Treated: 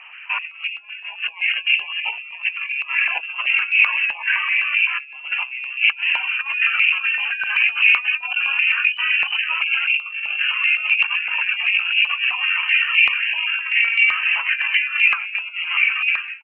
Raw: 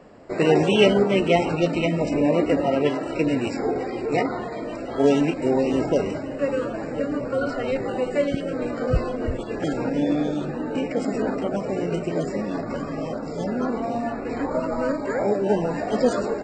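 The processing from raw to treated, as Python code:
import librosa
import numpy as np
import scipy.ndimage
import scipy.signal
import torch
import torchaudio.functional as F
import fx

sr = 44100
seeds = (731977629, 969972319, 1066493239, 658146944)

y = fx.fade_out_tail(x, sr, length_s=0.79)
y = fx.over_compress(y, sr, threshold_db=-27.0, ratio=-0.5)
y = fx.freq_invert(y, sr, carrier_hz=3000)
y = fx.air_absorb(y, sr, metres=59.0)
y = fx.filter_held_highpass(y, sr, hz=7.8, low_hz=890.0, high_hz=2300.0)
y = y * 10.0 ** (2.0 / 20.0)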